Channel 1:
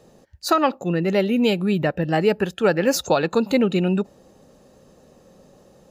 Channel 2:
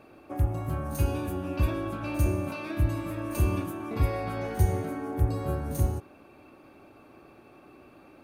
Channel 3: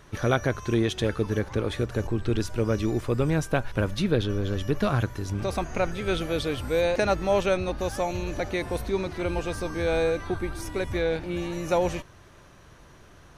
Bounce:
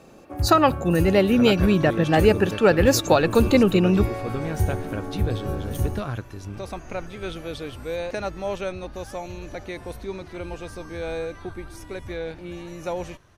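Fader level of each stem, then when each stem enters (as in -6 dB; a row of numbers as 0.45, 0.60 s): +1.5, +0.5, -5.5 dB; 0.00, 0.00, 1.15 s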